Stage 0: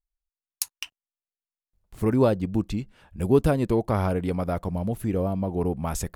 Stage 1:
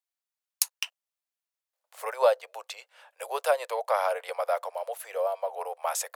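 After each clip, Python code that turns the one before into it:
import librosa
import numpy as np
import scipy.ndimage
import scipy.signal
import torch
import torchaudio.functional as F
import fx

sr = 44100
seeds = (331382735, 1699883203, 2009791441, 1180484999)

y = scipy.signal.sosfilt(scipy.signal.butter(12, 510.0, 'highpass', fs=sr, output='sos'), x)
y = y * 10.0 ** (3.0 / 20.0)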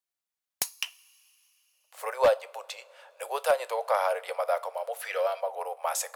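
y = fx.rev_double_slope(x, sr, seeds[0], early_s=0.29, late_s=4.0, knee_db=-22, drr_db=13.5)
y = fx.spec_box(y, sr, start_s=5.02, length_s=0.39, low_hz=1200.0, high_hz=6000.0, gain_db=10)
y = 10.0 ** (-13.5 / 20.0) * (np.abs((y / 10.0 ** (-13.5 / 20.0) + 3.0) % 4.0 - 2.0) - 1.0)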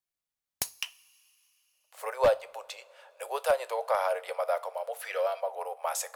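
y = fx.low_shelf(x, sr, hz=190.0, db=10.5)
y = fx.rev_double_slope(y, sr, seeds[1], early_s=0.27, late_s=1.6, knee_db=-21, drr_db=18.5)
y = y * 10.0 ** (-2.5 / 20.0)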